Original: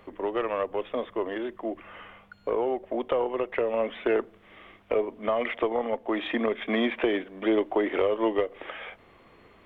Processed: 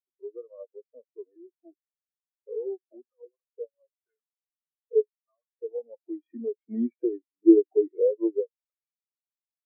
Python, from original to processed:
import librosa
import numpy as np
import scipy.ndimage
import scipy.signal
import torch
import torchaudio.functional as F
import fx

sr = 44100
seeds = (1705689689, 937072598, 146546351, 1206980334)

y = fx.wah_lfo(x, sr, hz=fx.line((3.09, 3.9), (5.65, 1.1)), low_hz=390.0, high_hz=1800.0, q=2.1, at=(3.09, 5.65), fade=0.02)
y = fx.spectral_expand(y, sr, expansion=4.0)
y = F.gain(torch.from_numpy(y), 7.0).numpy()